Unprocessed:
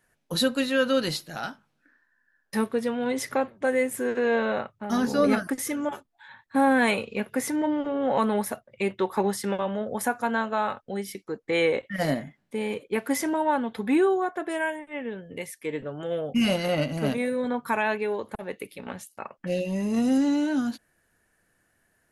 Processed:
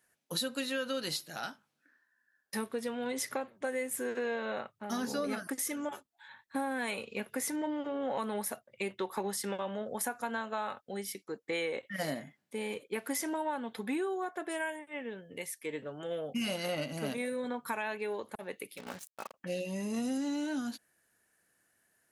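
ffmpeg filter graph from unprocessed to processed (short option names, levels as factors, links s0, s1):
-filter_complex "[0:a]asettb=1/sr,asplit=3[s0][s1][s2];[s0]atrim=end=18.774[s3];[s1]atrim=start=18.77:end=19.34,asetpts=PTS-STARTPTS,afade=t=in:d=0.004:c=qsin,afade=t=out:st=0.566:d=0.004:c=qsin,highshelf=f=9300:g=-9,acrusher=bits=6:mix=0:aa=0.5[s4];[s2]atrim=start=19.336[s5];[s3][s4]acrossfade=d=0.004:c1=hsin:c2=qsin[s6];[s6][s5]acrossfade=d=0.004:c1=qsin:c2=hsin,highpass=f=180:p=1,highshelf=f=3600:g=7.5,acompressor=threshold=0.0631:ratio=6,volume=0.473"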